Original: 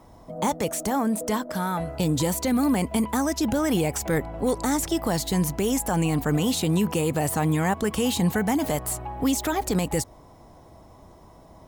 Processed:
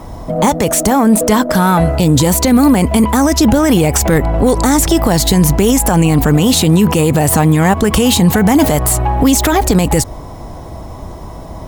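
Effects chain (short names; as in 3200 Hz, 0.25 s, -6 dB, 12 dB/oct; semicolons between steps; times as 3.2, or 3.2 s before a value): low shelf 93 Hz +8.5 dB; in parallel at -8.5 dB: one-sided clip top -34.5 dBFS; on the sum: maximiser +16.5 dB; gain -1 dB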